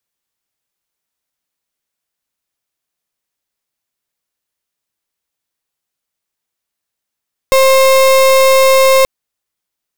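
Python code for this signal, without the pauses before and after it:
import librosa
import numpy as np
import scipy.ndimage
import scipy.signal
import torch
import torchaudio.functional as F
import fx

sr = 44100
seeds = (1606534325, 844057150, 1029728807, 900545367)

y = fx.pulse(sr, length_s=1.53, hz=531.0, level_db=-8.0, duty_pct=35)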